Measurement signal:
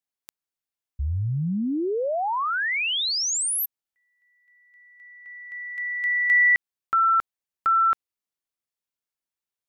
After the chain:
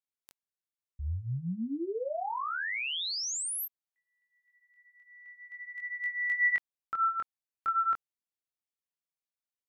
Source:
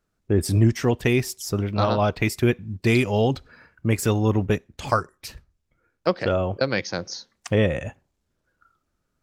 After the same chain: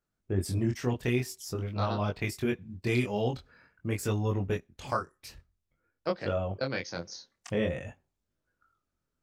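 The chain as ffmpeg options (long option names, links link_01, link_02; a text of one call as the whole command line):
ffmpeg -i in.wav -af "flanger=delay=20:depth=4.5:speed=0.48,volume=-6dB" out.wav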